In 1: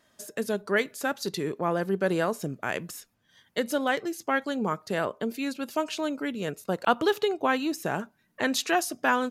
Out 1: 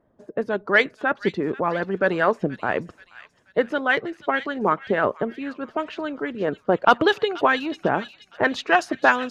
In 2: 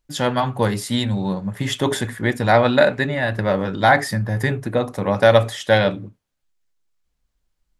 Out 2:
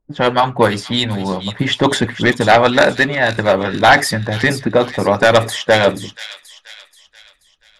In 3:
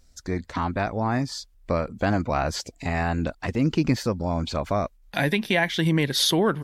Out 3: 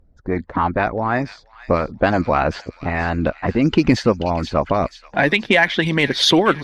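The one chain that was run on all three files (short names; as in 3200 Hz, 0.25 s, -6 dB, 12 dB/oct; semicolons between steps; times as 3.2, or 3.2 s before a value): low-pass opened by the level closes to 650 Hz, open at -14 dBFS; harmonic-percussive split harmonic -11 dB; sine folder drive 7 dB, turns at -3 dBFS; on a send: thin delay 0.481 s, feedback 45%, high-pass 2800 Hz, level -8 dB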